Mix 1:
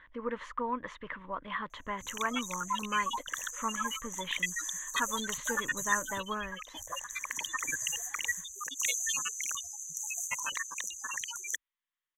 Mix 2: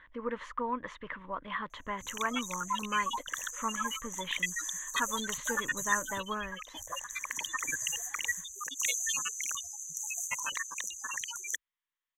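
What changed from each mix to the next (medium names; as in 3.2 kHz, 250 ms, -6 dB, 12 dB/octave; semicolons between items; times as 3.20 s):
no change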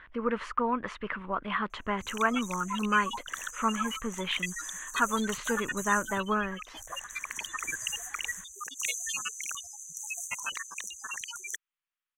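speech +6.5 dB; master: remove rippled EQ curve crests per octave 1.1, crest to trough 7 dB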